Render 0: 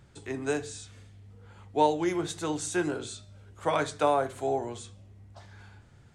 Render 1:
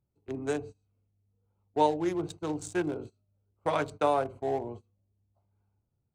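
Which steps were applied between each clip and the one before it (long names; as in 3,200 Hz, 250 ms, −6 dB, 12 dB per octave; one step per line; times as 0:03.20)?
adaptive Wiener filter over 25 samples
noise gate −41 dBFS, range −22 dB
level −1 dB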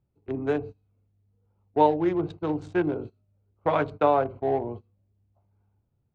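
high-frequency loss of the air 320 metres
level +6 dB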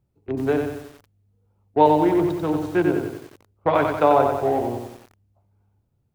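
feedback echo at a low word length 92 ms, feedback 55%, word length 8 bits, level −4.5 dB
level +4 dB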